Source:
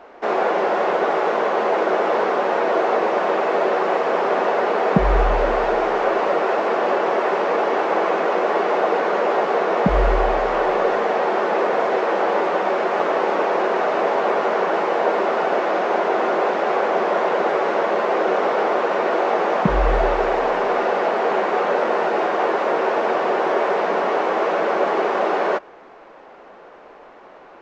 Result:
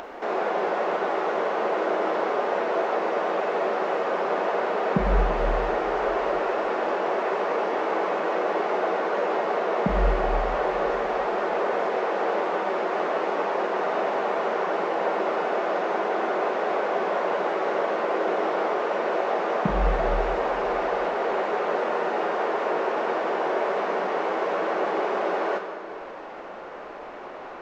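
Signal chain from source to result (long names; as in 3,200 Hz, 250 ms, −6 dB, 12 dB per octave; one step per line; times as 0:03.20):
upward compression, threshold −21 dBFS
on a send: convolution reverb RT60 2.3 s, pre-delay 31 ms, DRR 5 dB
on the sum: level −7 dB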